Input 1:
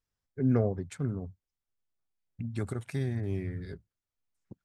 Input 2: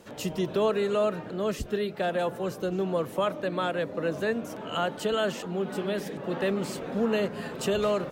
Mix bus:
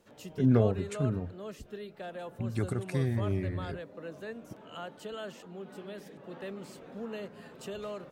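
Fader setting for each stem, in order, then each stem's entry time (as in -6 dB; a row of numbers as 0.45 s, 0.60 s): +2.0 dB, -13.5 dB; 0.00 s, 0.00 s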